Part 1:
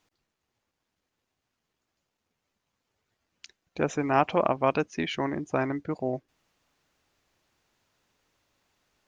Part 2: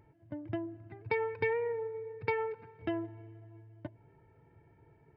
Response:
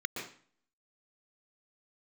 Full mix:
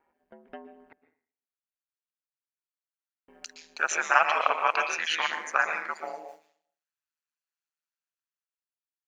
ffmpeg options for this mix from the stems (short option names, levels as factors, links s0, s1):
-filter_complex "[0:a]agate=range=0.0224:threshold=0.00316:ratio=3:detection=peak,highpass=1100,highshelf=f=4200:g=8.5,volume=0.944,asplit=3[s0][s1][s2];[s1]volume=0.531[s3];[1:a]volume=1.12,asplit=3[s4][s5][s6];[s4]atrim=end=0.93,asetpts=PTS-STARTPTS,afade=t=out:st=0.926:d=0.004:c=hsin[s7];[s5]atrim=start=0.93:end=3.28,asetpts=PTS-STARTPTS,volume=0[s8];[s6]atrim=start=3.28,asetpts=PTS-STARTPTS,afade=t=in:d=0.004:c=hsin[s9];[s7][s8][s9]concat=n=3:v=0:a=1,asplit=2[s10][s11];[s11]volume=0.178[s12];[s2]apad=whole_len=227664[s13];[s10][s13]sidechaincompress=threshold=0.00562:ratio=8:attack=7.9:release=335[s14];[2:a]atrim=start_sample=2205[s15];[s3][s12]amix=inputs=2:normalize=0[s16];[s16][s15]afir=irnorm=-1:irlink=0[s17];[s0][s14][s17]amix=inputs=3:normalize=0,highpass=570,dynaudnorm=f=210:g=11:m=3.98,aeval=exprs='val(0)*sin(2*PI*78*n/s)':c=same"